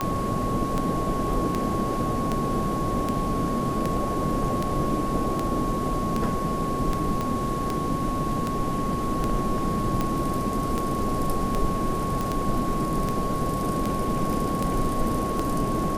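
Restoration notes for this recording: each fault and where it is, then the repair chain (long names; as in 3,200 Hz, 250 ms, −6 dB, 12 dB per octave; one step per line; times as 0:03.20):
scratch tick 78 rpm −12 dBFS
whistle 1,100 Hz −29 dBFS
0:07.21: click −15 dBFS
0:12.21: click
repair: click removal
notch filter 1,100 Hz, Q 30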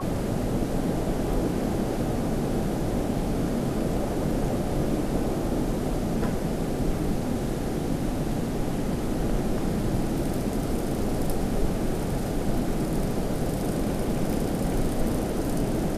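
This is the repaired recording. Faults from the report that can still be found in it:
0:07.21: click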